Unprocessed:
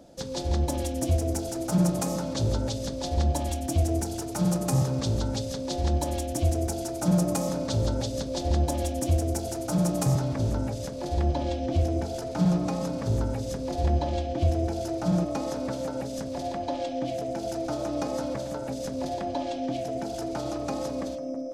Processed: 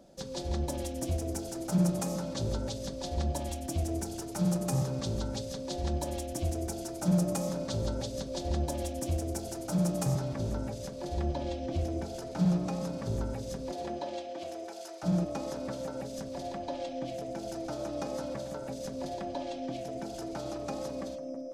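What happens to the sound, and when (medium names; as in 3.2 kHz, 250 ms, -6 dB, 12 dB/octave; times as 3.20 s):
13.71–15.02 s: high-pass 220 Hz -> 820 Hz
whole clip: comb 5.2 ms, depth 32%; trim -5.5 dB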